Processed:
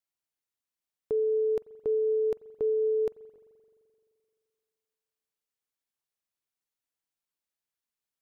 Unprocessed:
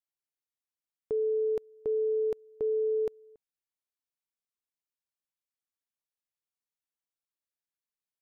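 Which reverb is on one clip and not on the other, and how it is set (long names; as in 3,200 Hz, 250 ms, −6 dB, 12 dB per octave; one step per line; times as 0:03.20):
spring reverb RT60 2.4 s, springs 43 ms, chirp 55 ms, DRR 18 dB
level +2 dB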